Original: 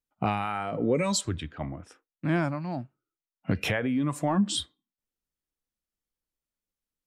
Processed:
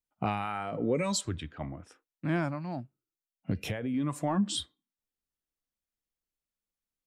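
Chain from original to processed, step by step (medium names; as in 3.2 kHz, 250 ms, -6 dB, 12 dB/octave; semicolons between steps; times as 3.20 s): 2.80–3.94 s: peaking EQ 1.4 kHz -9.5 dB 2.4 oct; trim -3.5 dB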